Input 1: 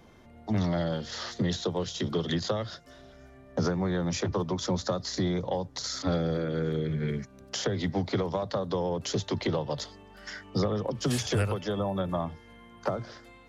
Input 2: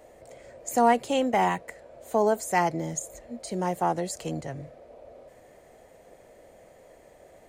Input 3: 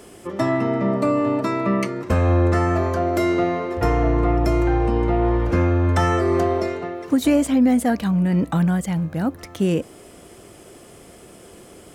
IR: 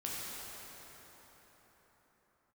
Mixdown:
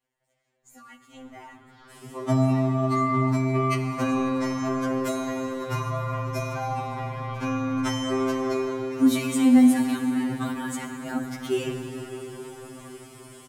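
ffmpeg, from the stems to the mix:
-filter_complex "[0:a]lowpass=1800,asoftclip=type=tanh:threshold=0.0422,adelay=650,volume=0.316,asplit=2[s0][s1];[s1]volume=0.562[s2];[1:a]lowshelf=f=350:g=-6,aeval=exprs='sgn(val(0))*max(abs(val(0))-0.00188,0)':c=same,volume=0.133,asplit=3[s3][s4][s5];[s3]atrim=end=3.06,asetpts=PTS-STARTPTS,afade=t=out:st=3.056:d=0.004:c=hsin[s6];[s4]atrim=start=3.06:end=3.8,asetpts=PTS-STARTPTS,volume=0[s7];[s5]atrim=start=3.8,asetpts=PTS-STARTPTS,afade=t=in:d=0.004:c=hsin[s8];[s6][s7][s8]concat=n=3:v=0:a=1,asplit=3[s9][s10][s11];[s10]volume=0.355[s12];[2:a]adynamicequalizer=threshold=0.0224:dfrequency=260:dqfactor=1.1:tfrequency=260:tqfactor=1.1:attack=5:release=100:ratio=0.375:range=3:mode=cutabove:tftype=bell,adelay=1900,volume=0.75,asplit=2[s13][s14];[s14]volume=0.708[s15];[s11]apad=whole_len=623373[s16];[s0][s16]sidechaincompress=threshold=0.00316:ratio=8:attack=16:release=318[s17];[3:a]atrim=start_sample=2205[s18];[s2][s12][s15]amix=inputs=3:normalize=0[s19];[s19][s18]afir=irnorm=-1:irlink=0[s20];[s17][s9][s13][s20]amix=inputs=4:normalize=0,equalizer=f=540:w=2.4:g=-11.5,afftfilt=real='re*2.45*eq(mod(b,6),0)':imag='im*2.45*eq(mod(b,6),0)':win_size=2048:overlap=0.75"

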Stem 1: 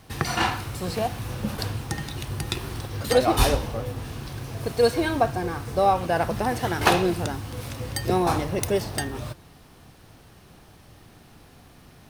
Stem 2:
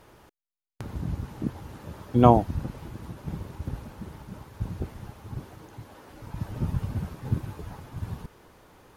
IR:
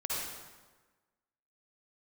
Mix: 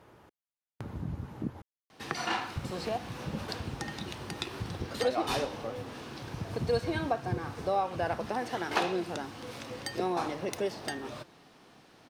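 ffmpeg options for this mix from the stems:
-filter_complex "[0:a]acrossover=split=180 7100:gain=0.1 1 0.224[s0][s1][s2];[s0][s1][s2]amix=inputs=3:normalize=0,adelay=1900,volume=0.668[s3];[1:a]highpass=76,highshelf=f=4000:g=-9,volume=0.794,asplit=3[s4][s5][s6];[s4]atrim=end=1.62,asetpts=PTS-STARTPTS,afade=t=out:st=1.616:d=0.004:c=hsin[s7];[s5]atrim=start=1.62:end=2.56,asetpts=PTS-STARTPTS,volume=0[s8];[s6]atrim=start=2.56,asetpts=PTS-STARTPTS,afade=t=in:d=0.004:c=hsin[s9];[s7][s8][s9]concat=n=3:v=0:a=1[s10];[s3][s10]amix=inputs=2:normalize=0,acompressor=threshold=0.0178:ratio=1.5"

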